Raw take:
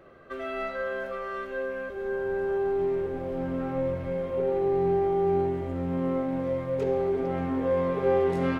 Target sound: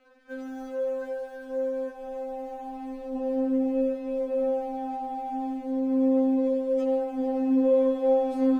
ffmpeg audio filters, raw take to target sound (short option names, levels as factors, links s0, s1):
-af "aeval=exprs='sgn(val(0))*max(abs(val(0))-0.00158,0)':c=same,afftfilt=real='re*3.46*eq(mod(b,12),0)':imag='im*3.46*eq(mod(b,12),0)':win_size=2048:overlap=0.75"